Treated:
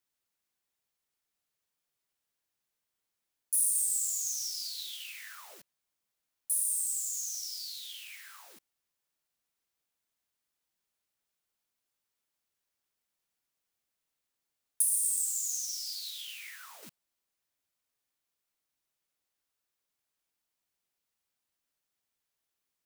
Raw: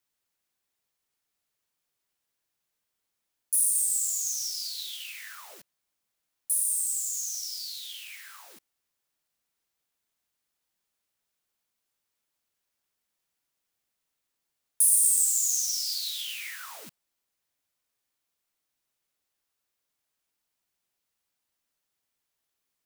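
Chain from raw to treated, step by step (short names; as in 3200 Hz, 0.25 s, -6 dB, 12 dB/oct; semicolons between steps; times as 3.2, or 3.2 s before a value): 14.82–16.83 flange 1.5 Hz, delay 3.3 ms, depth 5.3 ms, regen -55%; gain -3.5 dB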